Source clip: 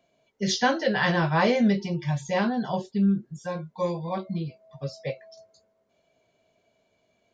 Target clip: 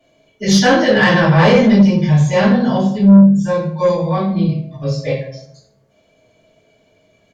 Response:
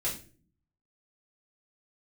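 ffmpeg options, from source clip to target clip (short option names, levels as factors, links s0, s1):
-filter_complex "[0:a]asplit=2[s0][s1];[s1]adelay=76,lowpass=f=2500:p=1,volume=0.282,asplit=2[s2][s3];[s3]adelay=76,lowpass=f=2500:p=1,volume=0.51,asplit=2[s4][s5];[s5]adelay=76,lowpass=f=2500:p=1,volume=0.51,asplit=2[s6][s7];[s7]adelay=76,lowpass=f=2500:p=1,volume=0.51,asplit=2[s8][s9];[s9]adelay=76,lowpass=f=2500:p=1,volume=0.51[s10];[s0][s2][s4][s6][s8][s10]amix=inputs=6:normalize=0[s11];[1:a]atrim=start_sample=2205,asetrate=37926,aresample=44100[s12];[s11][s12]afir=irnorm=-1:irlink=0,acontrast=84,volume=0.891"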